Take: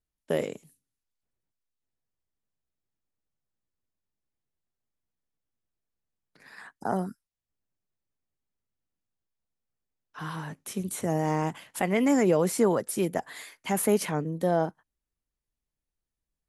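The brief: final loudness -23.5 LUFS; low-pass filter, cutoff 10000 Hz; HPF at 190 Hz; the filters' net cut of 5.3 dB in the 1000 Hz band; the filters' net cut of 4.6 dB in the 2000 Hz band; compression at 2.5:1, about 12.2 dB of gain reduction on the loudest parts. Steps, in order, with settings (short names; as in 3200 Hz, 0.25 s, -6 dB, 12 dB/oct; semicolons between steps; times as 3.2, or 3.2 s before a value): HPF 190 Hz; LPF 10000 Hz; bell 1000 Hz -7 dB; bell 2000 Hz -3.5 dB; compressor 2.5:1, threshold -39 dBFS; gain +16.5 dB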